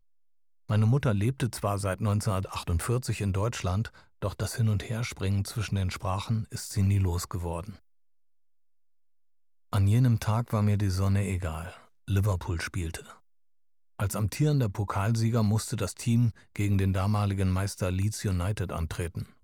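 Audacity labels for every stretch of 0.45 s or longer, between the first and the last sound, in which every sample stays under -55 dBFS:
7.790000	9.720000	silence
13.200000	13.990000	silence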